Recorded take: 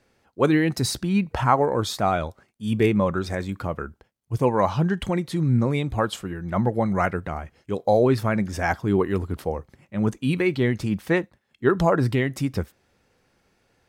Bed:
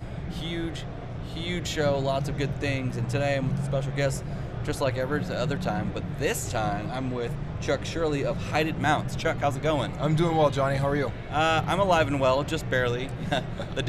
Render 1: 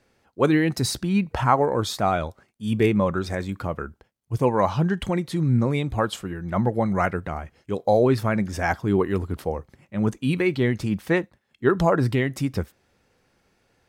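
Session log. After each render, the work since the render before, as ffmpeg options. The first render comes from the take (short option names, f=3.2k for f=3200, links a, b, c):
-af anull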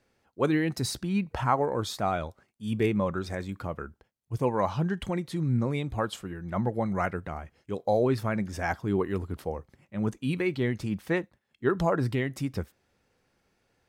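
-af "volume=-6dB"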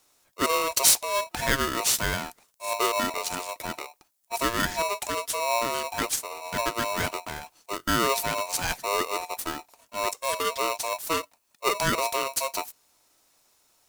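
-af "aexciter=amount=6.8:drive=6.1:freq=4.6k,aeval=exprs='val(0)*sgn(sin(2*PI*810*n/s))':c=same"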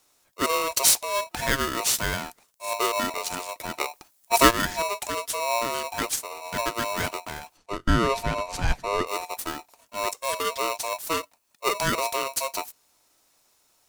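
-filter_complex "[0:a]asplit=3[a][b][c];[a]afade=t=out:st=7.56:d=0.02[d];[b]aemphasis=mode=reproduction:type=bsi,afade=t=in:st=7.56:d=0.02,afade=t=out:st=9.06:d=0.02[e];[c]afade=t=in:st=9.06:d=0.02[f];[d][e][f]amix=inputs=3:normalize=0,asplit=3[g][h][i];[g]atrim=end=3.802[j];[h]atrim=start=3.798:end=4.512,asetpts=PTS-STARTPTS,volume=10dB[k];[i]atrim=start=4.508[l];[j][k]acrossfade=d=0.004:c1=hsin:c2=hsin[m];[m][l]acrossfade=d=0.004:c1=hsin:c2=hsin"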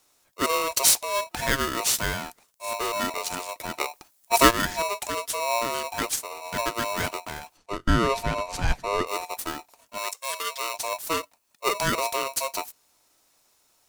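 -filter_complex "[0:a]asettb=1/sr,asplit=3[a][b][c];[a]atrim=end=2.124[d];[b]atrim=start=2.12:end=3.01,asetpts=PTS-STARTPTS,afade=t=in:d=0.004:c=qsin,afade=t=out:st=0.886:d=0.004:c=qsin,asoftclip=type=hard:threshold=-25.5dB[e];[c]atrim=start=3.006[f];[d][e]acrossfade=d=0.004:c1=hsin:c2=qsin[g];[g][f]acrossfade=d=0.004:c1=qsin:c2=hsin,asettb=1/sr,asplit=3[h][i][j];[h]atrim=end=9.984[k];[i]atrim=start=9.98:end=10.74,asetpts=PTS-STARTPTS,afade=t=in:d=0.004:c=qsin,afade=t=out:st=0.756:d=0.004:c=qsin,highpass=f=1.3k:p=1[l];[j]atrim=start=10.736[m];[k][l]acrossfade=d=0.004:c1=hsin:c2=qsin[n];[n][m]acrossfade=d=0.004:c1=qsin:c2=hsin"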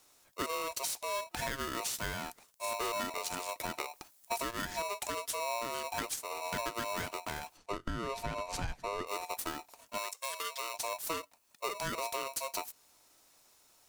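-af "alimiter=limit=-15.5dB:level=0:latency=1:release=155,acompressor=threshold=-34dB:ratio=6"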